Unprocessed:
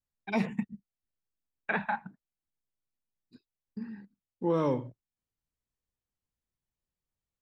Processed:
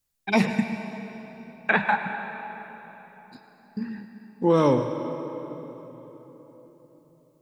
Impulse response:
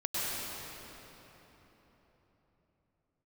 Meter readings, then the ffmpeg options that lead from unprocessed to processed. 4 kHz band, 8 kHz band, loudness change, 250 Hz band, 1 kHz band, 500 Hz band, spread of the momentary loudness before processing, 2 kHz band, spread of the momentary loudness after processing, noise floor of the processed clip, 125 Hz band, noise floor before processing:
+13.0 dB, can't be measured, +7.0 dB, +8.5 dB, +9.5 dB, +9.0 dB, 20 LU, +10.5 dB, 21 LU, −60 dBFS, +8.0 dB, below −85 dBFS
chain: -filter_complex "[0:a]highshelf=frequency=4300:gain=9,asplit=2[link_01][link_02];[1:a]atrim=start_sample=2205,lowshelf=frequency=160:gain=-11.5[link_03];[link_02][link_03]afir=irnorm=-1:irlink=0,volume=-13dB[link_04];[link_01][link_04]amix=inputs=2:normalize=0,volume=7dB"

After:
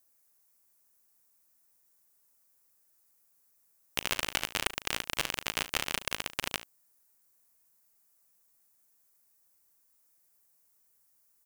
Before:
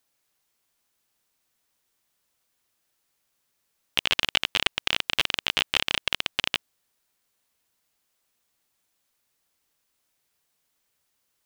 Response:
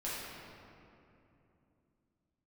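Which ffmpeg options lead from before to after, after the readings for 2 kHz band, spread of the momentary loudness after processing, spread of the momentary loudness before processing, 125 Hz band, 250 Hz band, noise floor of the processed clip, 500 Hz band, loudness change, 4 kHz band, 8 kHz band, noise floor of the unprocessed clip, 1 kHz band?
−7.0 dB, 5 LU, 4 LU, −3.0 dB, −3.0 dB, −69 dBFS, −3.0 dB, −7.5 dB, −10.5 dB, +2.0 dB, −75 dBFS, −3.5 dB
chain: -af "equalizer=frequency=3300:width=1.3:gain=-11.5,aecho=1:1:38|72:0.178|0.15,crystalizer=i=1.5:c=0,volume=-3dB"

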